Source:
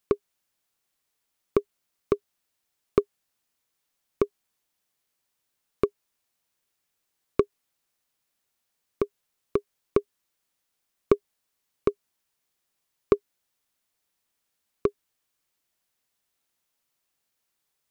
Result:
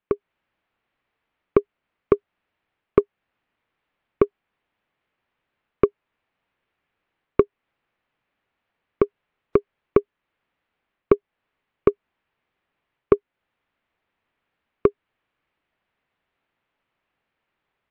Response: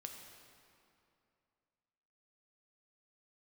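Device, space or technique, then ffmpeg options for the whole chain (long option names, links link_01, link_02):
action camera in a waterproof case: -af "lowpass=frequency=2700:width=0.5412,lowpass=frequency=2700:width=1.3066,dynaudnorm=framelen=120:gausssize=3:maxgain=8.5dB" -ar 48000 -c:a aac -b:a 96k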